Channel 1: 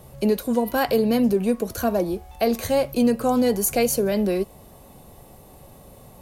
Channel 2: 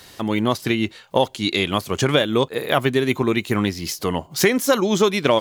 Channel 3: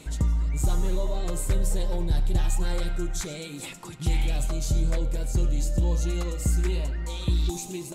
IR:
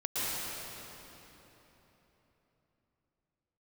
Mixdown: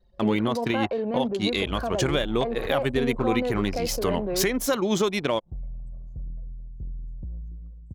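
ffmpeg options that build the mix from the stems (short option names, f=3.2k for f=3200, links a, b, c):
-filter_complex "[0:a]acrossover=split=3700[a][b];[b]acompressor=threshold=-47dB:ratio=4:attack=1:release=60[c];[a][c]amix=inputs=2:normalize=0,equalizer=f=900:w=0.35:g=13.5,volume=-12dB[d];[1:a]alimiter=limit=-12dB:level=0:latency=1:release=414,volume=-1dB[e];[2:a]adelay=1450,volume=-15dB[f];[d][f]amix=inputs=2:normalize=0,lowshelf=f=78:g=5.5,alimiter=limit=-20.5dB:level=0:latency=1:release=79,volume=0dB[g];[e][g]amix=inputs=2:normalize=0,anlmdn=10"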